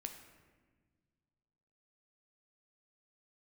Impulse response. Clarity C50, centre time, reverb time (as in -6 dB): 7.5 dB, 24 ms, no single decay rate